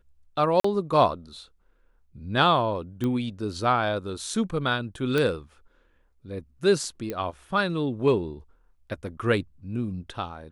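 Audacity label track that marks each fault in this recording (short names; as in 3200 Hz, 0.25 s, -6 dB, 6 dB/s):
0.600000	0.640000	gap 44 ms
3.040000	3.040000	pop -17 dBFS
5.180000	5.180000	pop -13 dBFS
7.100000	7.100000	pop -17 dBFS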